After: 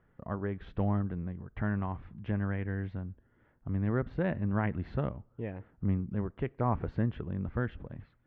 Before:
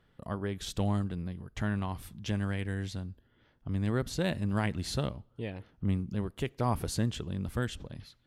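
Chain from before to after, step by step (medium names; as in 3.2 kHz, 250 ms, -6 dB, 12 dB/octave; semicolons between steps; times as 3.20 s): low-pass 2 kHz 24 dB/octave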